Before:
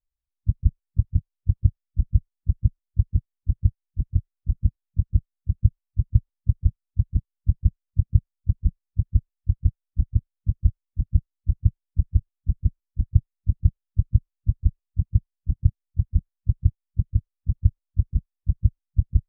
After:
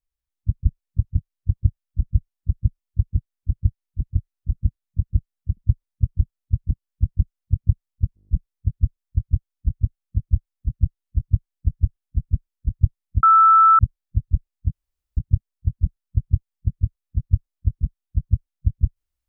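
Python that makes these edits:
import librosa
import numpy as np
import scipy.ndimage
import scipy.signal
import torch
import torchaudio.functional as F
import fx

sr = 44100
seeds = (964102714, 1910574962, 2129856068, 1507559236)

y = fx.edit(x, sr, fx.cut(start_s=5.57, length_s=0.46),
    fx.stutter(start_s=8.61, slice_s=0.02, count=8),
    fx.bleep(start_s=13.55, length_s=0.56, hz=1320.0, db=-9.0),
    fx.room_tone_fill(start_s=15.04, length_s=0.45), tone=tone)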